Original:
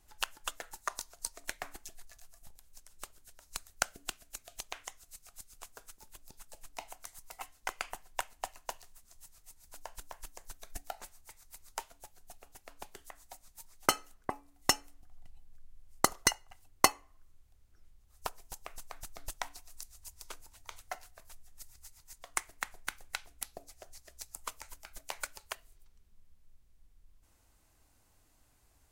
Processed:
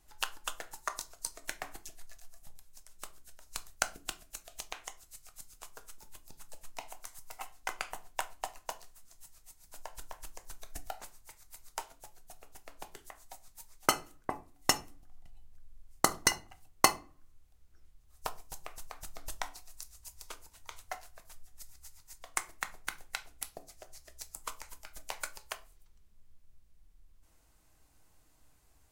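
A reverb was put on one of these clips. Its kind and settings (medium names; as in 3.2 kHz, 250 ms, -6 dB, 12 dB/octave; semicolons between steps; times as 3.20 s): simulated room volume 200 m³, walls furnished, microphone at 0.55 m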